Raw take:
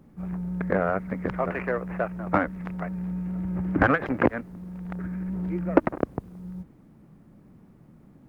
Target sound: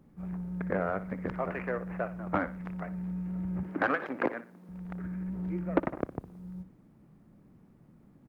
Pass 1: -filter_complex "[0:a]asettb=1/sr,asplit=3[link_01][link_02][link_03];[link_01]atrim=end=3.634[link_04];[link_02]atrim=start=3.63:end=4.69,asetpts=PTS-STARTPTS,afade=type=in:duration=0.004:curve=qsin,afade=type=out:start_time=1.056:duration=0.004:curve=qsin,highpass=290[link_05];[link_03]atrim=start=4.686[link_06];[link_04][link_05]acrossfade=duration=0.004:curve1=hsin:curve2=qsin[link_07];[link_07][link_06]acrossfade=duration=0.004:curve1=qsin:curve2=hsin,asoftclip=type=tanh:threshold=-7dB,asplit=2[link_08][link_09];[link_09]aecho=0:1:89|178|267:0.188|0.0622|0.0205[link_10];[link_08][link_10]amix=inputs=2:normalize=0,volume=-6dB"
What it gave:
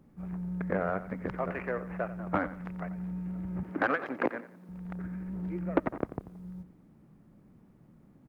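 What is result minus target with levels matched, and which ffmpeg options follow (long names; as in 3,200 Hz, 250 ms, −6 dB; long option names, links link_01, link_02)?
echo 29 ms late
-filter_complex "[0:a]asettb=1/sr,asplit=3[link_01][link_02][link_03];[link_01]atrim=end=3.634[link_04];[link_02]atrim=start=3.63:end=4.69,asetpts=PTS-STARTPTS,afade=type=in:duration=0.004:curve=qsin,afade=type=out:start_time=1.056:duration=0.004:curve=qsin,highpass=290[link_05];[link_03]atrim=start=4.686[link_06];[link_04][link_05]acrossfade=duration=0.004:curve1=hsin:curve2=qsin[link_07];[link_07][link_06]acrossfade=duration=0.004:curve1=qsin:curve2=hsin,asoftclip=type=tanh:threshold=-7dB,asplit=2[link_08][link_09];[link_09]aecho=0:1:60|120|180:0.188|0.0622|0.0205[link_10];[link_08][link_10]amix=inputs=2:normalize=0,volume=-6dB"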